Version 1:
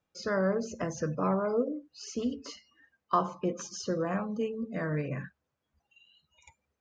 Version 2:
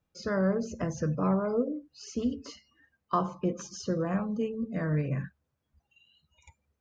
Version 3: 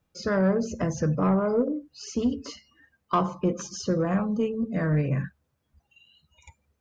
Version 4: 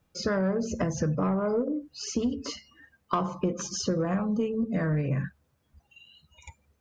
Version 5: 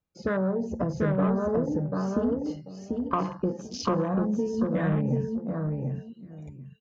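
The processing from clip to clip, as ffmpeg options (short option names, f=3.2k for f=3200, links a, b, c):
-af "lowshelf=f=180:g=12,volume=-2dB"
-af "asoftclip=type=tanh:threshold=-19dB,volume=5.5dB"
-af "acompressor=threshold=-29dB:ratio=4,volume=4dB"
-af "aecho=1:1:741|1482|2223:0.708|0.163|0.0375,afwtdn=0.0141"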